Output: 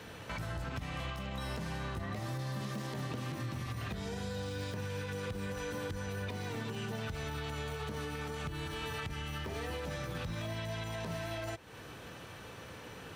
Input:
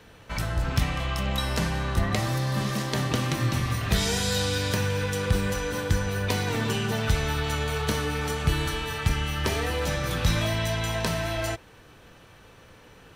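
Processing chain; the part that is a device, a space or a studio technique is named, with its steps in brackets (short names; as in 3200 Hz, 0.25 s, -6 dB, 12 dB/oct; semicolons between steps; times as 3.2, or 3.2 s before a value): podcast mastering chain (HPF 71 Hz 12 dB/oct; de-esser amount 90%; compressor 4:1, threshold -41 dBFS, peak gain reduction 18.5 dB; limiter -33.5 dBFS, peak gain reduction 5 dB; gain +4 dB; MP3 112 kbps 48000 Hz)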